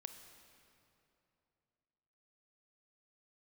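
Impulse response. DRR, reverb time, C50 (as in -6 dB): 7.5 dB, 2.9 s, 8.0 dB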